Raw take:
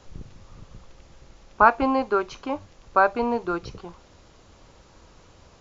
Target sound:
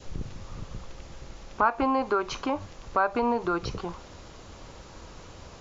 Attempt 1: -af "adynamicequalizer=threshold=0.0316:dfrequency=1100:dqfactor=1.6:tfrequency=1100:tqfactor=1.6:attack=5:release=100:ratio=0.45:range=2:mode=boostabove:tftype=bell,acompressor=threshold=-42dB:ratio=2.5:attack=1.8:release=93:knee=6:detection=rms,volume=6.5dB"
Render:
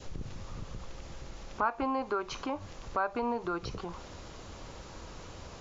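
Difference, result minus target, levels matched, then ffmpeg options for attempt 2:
downward compressor: peak gain reduction +6.5 dB
-af "adynamicequalizer=threshold=0.0316:dfrequency=1100:dqfactor=1.6:tfrequency=1100:tqfactor=1.6:attack=5:release=100:ratio=0.45:range=2:mode=boostabove:tftype=bell,acompressor=threshold=-31dB:ratio=2.5:attack=1.8:release=93:knee=6:detection=rms,volume=6.5dB"

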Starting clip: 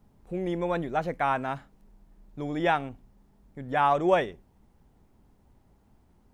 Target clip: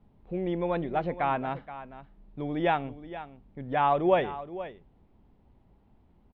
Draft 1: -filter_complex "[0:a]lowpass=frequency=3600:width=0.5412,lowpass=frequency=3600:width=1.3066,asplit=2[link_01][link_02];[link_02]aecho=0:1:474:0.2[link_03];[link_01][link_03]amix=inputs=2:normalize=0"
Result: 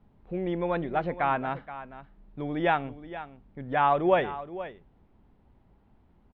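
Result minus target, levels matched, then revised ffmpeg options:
2,000 Hz band +2.5 dB
-filter_complex "[0:a]lowpass=frequency=3600:width=0.5412,lowpass=frequency=3600:width=1.3066,equalizer=frequency=1500:width=1.6:gain=-4.5,asplit=2[link_01][link_02];[link_02]aecho=0:1:474:0.2[link_03];[link_01][link_03]amix=inputs=2:normalize=0"

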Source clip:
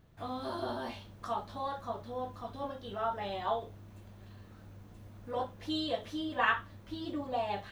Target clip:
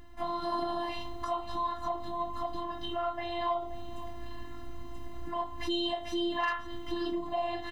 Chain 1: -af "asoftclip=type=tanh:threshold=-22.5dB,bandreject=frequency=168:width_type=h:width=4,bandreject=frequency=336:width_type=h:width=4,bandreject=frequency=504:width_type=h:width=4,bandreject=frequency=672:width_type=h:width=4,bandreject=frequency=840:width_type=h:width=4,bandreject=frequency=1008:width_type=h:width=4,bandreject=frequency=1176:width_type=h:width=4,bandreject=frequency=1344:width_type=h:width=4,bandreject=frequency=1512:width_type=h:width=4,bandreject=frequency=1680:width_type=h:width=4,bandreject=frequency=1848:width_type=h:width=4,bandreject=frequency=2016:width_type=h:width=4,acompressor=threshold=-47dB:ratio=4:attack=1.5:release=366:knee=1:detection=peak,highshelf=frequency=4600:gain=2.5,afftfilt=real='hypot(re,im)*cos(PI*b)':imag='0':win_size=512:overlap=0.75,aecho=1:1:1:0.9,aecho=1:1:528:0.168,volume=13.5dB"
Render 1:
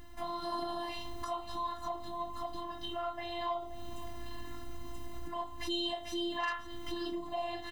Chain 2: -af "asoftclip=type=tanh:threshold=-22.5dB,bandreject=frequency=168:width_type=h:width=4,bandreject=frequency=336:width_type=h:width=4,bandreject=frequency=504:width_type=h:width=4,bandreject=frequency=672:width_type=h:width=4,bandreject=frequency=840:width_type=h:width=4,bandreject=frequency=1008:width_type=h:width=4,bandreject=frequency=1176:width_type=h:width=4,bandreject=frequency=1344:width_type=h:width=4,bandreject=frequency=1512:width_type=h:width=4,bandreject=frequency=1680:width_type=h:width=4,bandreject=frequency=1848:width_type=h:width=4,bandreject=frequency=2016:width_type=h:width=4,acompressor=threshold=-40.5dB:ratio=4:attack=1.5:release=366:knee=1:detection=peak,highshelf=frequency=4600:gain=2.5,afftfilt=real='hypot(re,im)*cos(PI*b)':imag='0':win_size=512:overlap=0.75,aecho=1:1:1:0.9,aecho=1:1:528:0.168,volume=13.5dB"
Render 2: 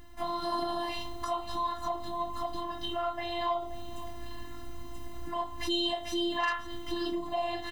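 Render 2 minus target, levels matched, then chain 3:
4,000 Hz band +2.5 dB
-af "asoftclip=type=tanh:threshold=-22.5dB,bandreject=frequency=168:width_type=h:width=4,bandreject=frequency=336:width_type=h:width=4,bandreject=frequency=504:width_type=h:width=4,bandreject=frequency=672:width_type=h:width=4,bandreject=frequency=840:width_type=h:width=4,bandreject=frequency=1008:width_type=h:width=4,bandreject=frequency=1176:width_type=h:width=4,bandreject=frequency=1344:width_type=h:width=4,bandreject=frequency=1512:width_type=h:width=4,bandreject=frequency=1680:width_type=h:width=4,bandreject=frequency=1848:width_type=h:width=4,bandreject=frequency=2016:width_type=h:width=4,acompressor=threshold=-40.5dB:ratio=4:attack=1.5:release=366:knee=1:detection=peak,highshelf=frequency=4600:gain=-8,afftfilt=real='hypot(re,im)*cos(PI*b)':imag='0':win_size=512:overlap=0.75,aecho=1:1:1:0.9,aecho=1:1:528:0.168,volume=13.5dB"

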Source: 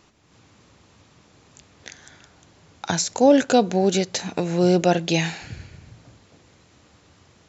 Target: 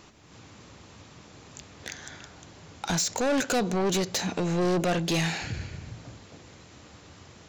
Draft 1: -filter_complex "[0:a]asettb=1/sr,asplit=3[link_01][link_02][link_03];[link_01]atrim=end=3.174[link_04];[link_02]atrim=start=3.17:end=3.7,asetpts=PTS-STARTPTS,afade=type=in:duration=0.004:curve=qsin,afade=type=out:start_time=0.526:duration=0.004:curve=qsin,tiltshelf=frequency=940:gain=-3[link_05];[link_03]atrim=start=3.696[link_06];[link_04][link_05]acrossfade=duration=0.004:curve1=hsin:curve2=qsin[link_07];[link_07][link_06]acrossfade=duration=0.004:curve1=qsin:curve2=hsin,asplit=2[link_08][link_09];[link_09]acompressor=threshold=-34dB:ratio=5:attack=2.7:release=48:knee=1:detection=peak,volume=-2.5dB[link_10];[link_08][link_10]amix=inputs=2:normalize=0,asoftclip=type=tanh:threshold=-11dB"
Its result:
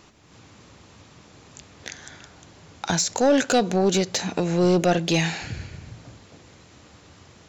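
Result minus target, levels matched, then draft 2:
soft clipping: distortion −9 dB
-filter_complex "[0:a]asettb=1/sr,asplit=3[link_01][link_02][link_03];[link_01]atrim=end=3.174[link_04];[link_02]atrim=start=3.17:end=3.7,asetpts=PTS-STARTPTS,afade=type=in:duration=0.004:curve=qsin,afade=type=out:start_time=0.526:duration=0.004:curve=qsin,tiltshelf=frequency=940:gain=-3[link_05];[link_03]atrim=start=3.696[link_06];[link_04][link_05]acrossfade=duration=0.004:curve1=hsin:curve2=qsin[link_07];[link_07][link_06]acrossfade=duration=0.004:curve1=qsin:curve2=hsin,asplit=2[link_08][link_09];[link_09]acompressor=threshold=-34dB:ratio=5:attack=2.7:release=48:knee=1:detection=peak,volume=-2.5dB[link_10];[link_08][link_10]amix=inputs=2:normalize=0,asoftclip=type=tanh:threshold=-22dB"

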